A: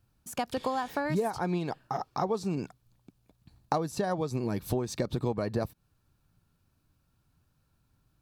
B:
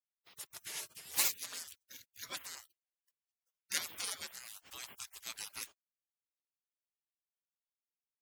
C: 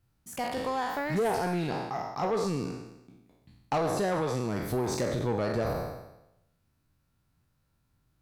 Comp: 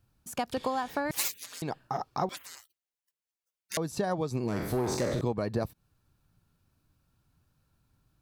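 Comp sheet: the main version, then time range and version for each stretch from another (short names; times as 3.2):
A
1.11–1.62 from B
2.29–3.77 from B
4.48–5.21 from C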